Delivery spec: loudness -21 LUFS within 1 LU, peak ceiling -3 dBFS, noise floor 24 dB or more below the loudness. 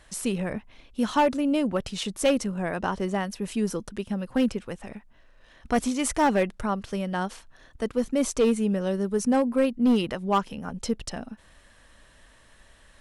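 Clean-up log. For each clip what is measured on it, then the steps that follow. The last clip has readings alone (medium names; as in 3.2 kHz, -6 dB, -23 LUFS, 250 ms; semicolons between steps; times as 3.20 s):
clipped samples 0.8%; clipping level -15.5 dBFS; loudness -26.5 LUFS; peak level -15.5 dBFS; loudness target -21.0 LUFS
-> clip repair -15.5 dBFS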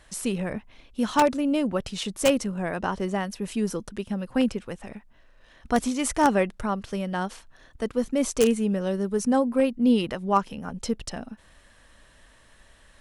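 clipped samples 0.0%; loudness -26.0 LUFS; peak level -6.5 dBFS; loudness target -21.0 LUFS
-> trim +5 dB; peak limiter -3 dBFS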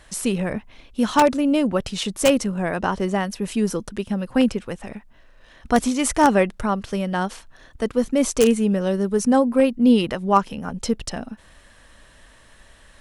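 loudness -21.0 LUFS; peak level -3.0 dBFS; noise floor -51 dBFS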